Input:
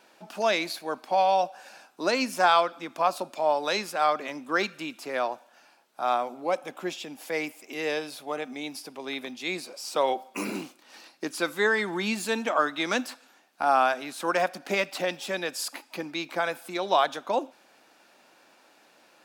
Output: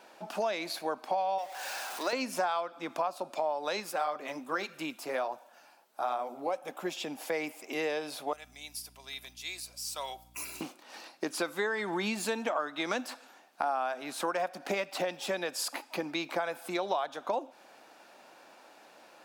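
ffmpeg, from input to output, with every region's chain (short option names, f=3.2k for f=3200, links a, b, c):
-filter_complex "[0:a]asettb=1/sr,asplit=3[a][b][c];[a]atrim=end=1.384[d];[b]atrim=start=1.38:end=2.13,asetpts=PTS-STARTPTS,afade=t=in:d=0.004:c=qsin,afade=t=out:st=0.746:d=0.004:c=qsin,aeval=exprs='val(0)+0.5*0.02*sgn(val(0))':c=same,highpass=f=1.2k:p=1[e];[c]atrim=start=2.126[f];[d][e]acrossfade=d=0.004:c1=hsin:c2=qsin[g];[g][f]acrossfade=d=0.004:c1=qsin:c2=hsin,asettb=1/sr,asplit=3[h][i][j];[h]atrim=end=3.804[k];[i]atrim=start=3.8:end=6.97,asetpts=PTS-STARTPTS,afade=t=in:d=0.004:c=qsin,afade=t=out:st=3.166:d=0.004:c=qsin,flanger=delay=0.5:depth=7.9:regen=-49:speed=1.3:shape=triangular,highshelf=f=11k:g=11.5[l];[j]atrim=start=6.966[m];[k][l]acrossfade=d=0.004:c1=hsin:c2=qsin[n];[n][m]acrossfade=d=0.004:c1=qsin:c2=hsin,asettb=1/sr,asplit=3[o][p][q];[o]atrim=end=8.334[r];[p]atrim=start=8.33:end=10.61,asetpts=PTS-STARTPTS,afade=t=in:d=0.004:c=qsin,afade=t=out:st=2.276:d=0.004:c=qsin,aderivative,aecho=1:1:3:0.35,atrim=end_sample=100548,aeval=exprs='val(0)+0.001*(sin(2*PI*60*n/s)+sin(2*PI*2*60*n/s)/2+sin(2*PI*3*60*n/s)/3+sin(2*PI*4*60*n/s)/4+sin(2*PI*5*60*n/s)/5)':c=same[s];[q]atrim=start=10.606[t];[r][s]acrossfade=d=0.004:c1=hsin:c2=qsin[u];[u][t]acrossfade=d=0.004:c1=qsin:c2=hsin,equalizer=f=730:t=o:w=1.6:g=5.5,acompressor=threshold=-29dB:ratio=6"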